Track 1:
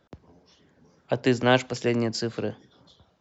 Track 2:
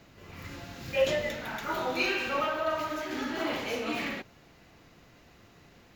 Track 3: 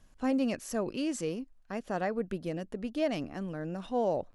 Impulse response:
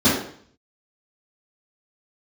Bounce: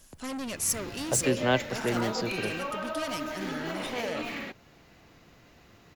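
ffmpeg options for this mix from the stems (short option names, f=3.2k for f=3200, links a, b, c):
-filter_complex "[0:a]volume=-5dB[a];[1:a]alimiter=level_in=1.5dB:limit=-24dB:level=0:latency=1:release=337,volume=-1.5dB,adelay=300,volume=0.5dB[b];[2:a]asoftclip=type=tanh:threshold=-33.5dB,crystalizer=i=6.5:c=0,volume=-0.5dB[c];[a][b][c]amix=inputs=3:normalize=0"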